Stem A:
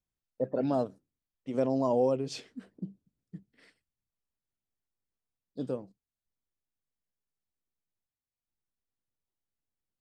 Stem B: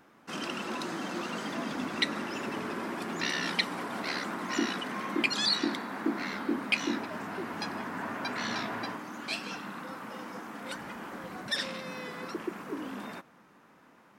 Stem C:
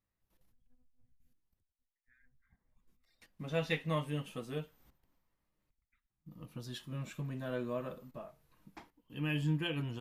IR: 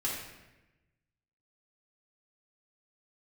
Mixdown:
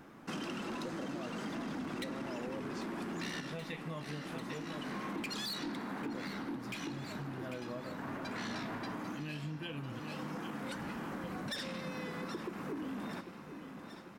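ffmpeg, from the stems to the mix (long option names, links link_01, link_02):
-filter_complex "[0:a]adelay=450,volume=-4dB[link_01];[1:a]lowshelf=frequency=280:gain=10.5,asoftclip=type=tanh:threshold=-28dB,volume=1dB,asplit=3[link_02][link_03][link_04];[link_03]volume=-20.5dB[link_05];[link_04]volume=-15.5dB[link_06];[2:a]volume=-1.5dB,asplit=3[link_07][link_08][link_09];[link_08]volume=-10dB[link_10];[link_09]apad=whole_len=625771[link_11];[link_02][link_11]sidechaincompress=threshold=-50dB:ratio=8:attack=22:release=401[link_12];[link_01][link_07]amix=inputs=2:normalize=0,alimiter=level_in=3dB:limit=-24dB:level=0:latency=1,volume=-3dB,volume=0dB[link_13];[3:a]atrim=start_sample=2205[link_14];[link_05][link_14]afir=irnorm=-1:irlink=0[link_15];[link_06][link_10]amix=inputs=2:normalize=0,aecho=0:1:794|1588|2382|3176|3970|4764|5558|6352:1|0.52|0.27|0.141|0.0731|0.038|0.0198|0.0103[link_16];[link_12][link_13][link_15][link_16]amix=inputs=4:normalize=0,acompressor=threshold=-38dB:ratio=6"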